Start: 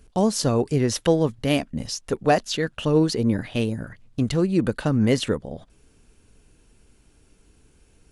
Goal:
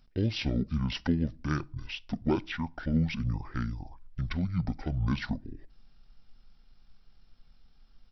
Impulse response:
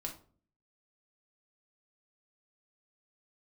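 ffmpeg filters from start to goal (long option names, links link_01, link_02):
-filter_complex "[0:a]asubboost=boost=4.5:cutoff=60,asetrate=22696,aresample=44100,atempo=1.94306,asplit=2[link_01][link_02];[1:a]atrim=start_sample=2205,highshelf=frequency=4400:gain=10[link_03];[link_02][link_03]afir=irnorm=-1:irlink=0,volume=-17dB[link_04];[link_01][link_04]amix=inputs=2:normalize=0,volume=-8.5dB"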